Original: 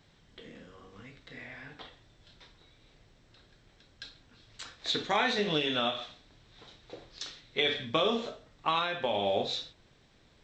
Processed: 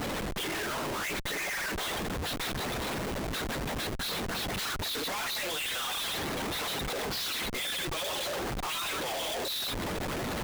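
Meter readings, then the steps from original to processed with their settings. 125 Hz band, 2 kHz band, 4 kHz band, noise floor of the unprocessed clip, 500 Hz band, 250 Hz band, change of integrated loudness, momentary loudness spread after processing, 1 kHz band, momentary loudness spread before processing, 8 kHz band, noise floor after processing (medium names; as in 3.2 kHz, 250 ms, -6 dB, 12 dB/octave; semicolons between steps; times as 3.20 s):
+7.5 dB, +4.0 dB, +2.0 dB, -63 dBFS, -1.5 dB, +2.5 dB, -1.5 dB, 3 LU, 0.0 dB, 21 LU, +16.0 dB, -34 dBFS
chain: harmonic-percussive separation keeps percussive; overdrive pedal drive 36 dB, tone 4 kHz, clips at -15.5 dBFS; Schmitt trigger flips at -41.5 dBFS; trim -5 dB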